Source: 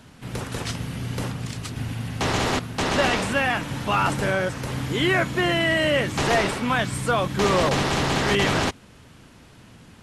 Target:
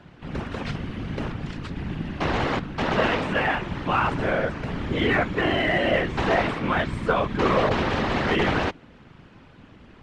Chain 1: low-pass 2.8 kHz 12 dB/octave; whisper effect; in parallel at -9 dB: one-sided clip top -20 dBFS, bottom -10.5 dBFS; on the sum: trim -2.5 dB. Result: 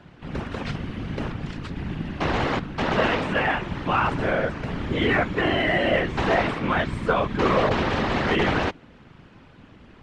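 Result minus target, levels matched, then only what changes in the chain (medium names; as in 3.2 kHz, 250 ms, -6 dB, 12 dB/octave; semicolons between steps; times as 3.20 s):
one-sided clip: distortion -5 dB
change: one-sided clip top -28 dBFS, bottom -10.5 dBFS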